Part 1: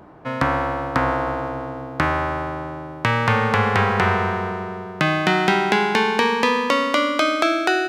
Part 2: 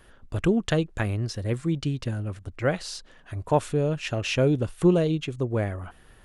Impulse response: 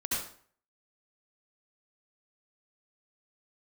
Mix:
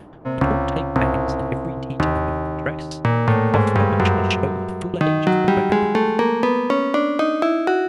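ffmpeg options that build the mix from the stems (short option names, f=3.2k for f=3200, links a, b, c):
-filter_complex "[0:a]tiltshelf=f=1.3k:g=8.5,bandreject=f=80.62:t=h:w=4,bandreject=f=161.24:t=h:w=4,bandreject=f=241.86:t=h:w=4,bandreject=f=322.48:t=h:w=4,bandreject=f=403.1:t=h:w=4,bandreject=f=483.72:t=h:w=4,bandreject=f=564.34:t=h:w=4,bandreject=f=644.96:t=h:w=4,bandreject=f=725.58:t=h:w=4,bandreject=f=806.2:t=h:w=4,bandreject=f=886.82:t=h:w=4,bandreject=f=967.44:t=h:w=4,bandreject=f=1.04806k:t=h:w=4,bandreject=f=1.12868k:t=h:w=4,bandreject=f=1.2093k:t=h:w=4,bandreject=f=1.28992k:t=h:w=4,bandreject=f=1.37054k:t=h:w=4,bandreject=f=1.45116k:t=h:w=4,bandreject=f=1.53178k:t=h:w=4,bandreject=f=1.6124k:t=h:w=4,bandreject=f=1.69302k:t=h:w=4,bandreject=f=1.77364k:t=h:w=4,bandreject=f=1.85426k:t=h:w=4,bandreject=f=1.93488k:t=h:w=4,bandreject=f=2.0155k:t=h:w=4,bandreject=f=2.09612k:t=h:w=4,bandreject=f=2.17674k:t=h:w=4,bandreject=f=2.25736k:t=h:w=4,volume=-3.5dB[a];[1:a]equalizer=f=2.4k:t=o:w=1.6:g=9,aeval=exprs='val(0)*pow(10,-33*if(lt(mod(7.9*n/s,1),2*abs(7.9)/1000),1-mod(7.9*n/s,1)/(2*abs(7.9)/1000),(mod(7.9*n/s,1)-2*abs(7.9)/1000)/(1-2*abs(7.9)/1000))/20)':c=same,volume=2dB[b];[a][b]amix=inputs=2:normalize=0"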